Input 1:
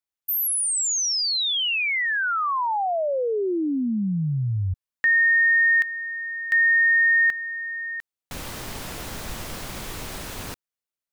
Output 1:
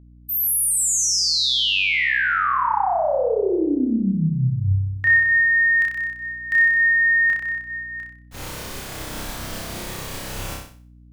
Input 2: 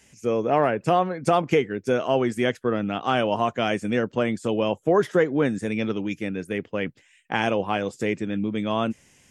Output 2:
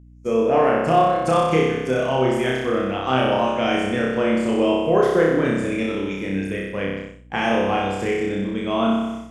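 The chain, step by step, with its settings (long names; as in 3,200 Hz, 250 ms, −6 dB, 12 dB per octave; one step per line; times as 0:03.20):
flutter between parallel walls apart 5.3 metres, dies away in 1.2 s
downward expander −27 dBFS, range −33 dB
mains hum 60 Hz, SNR 26 dB
level −1.5 dB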